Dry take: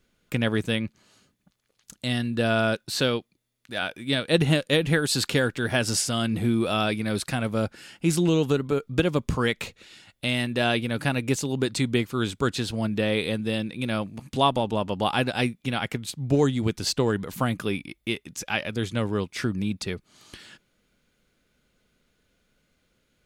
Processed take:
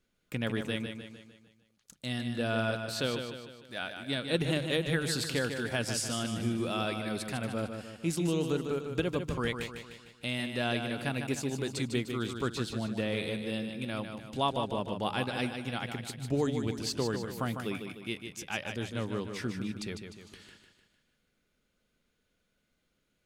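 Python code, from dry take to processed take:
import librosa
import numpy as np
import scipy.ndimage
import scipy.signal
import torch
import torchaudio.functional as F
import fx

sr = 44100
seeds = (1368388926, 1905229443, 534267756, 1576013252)

y = fx.hum_notches(x, sr, base_hz=50, count=3)
y = fx.echo_feedback(y, sr, ms=151, feedback_pct=49, wet_db=-7.0)
y = y * librosa.db_to_amplitude(-8.5)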